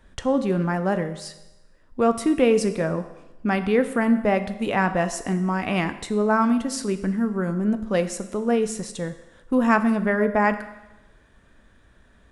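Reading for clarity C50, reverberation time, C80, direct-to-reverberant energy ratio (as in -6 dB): 12.5 dB, 1.0 s, 14.0 dB, 9.5 dB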